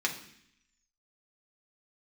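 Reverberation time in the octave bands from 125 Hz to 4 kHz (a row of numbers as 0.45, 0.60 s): 0.85, 0.90, 0.65, 0.65, 0.85, 0.85 s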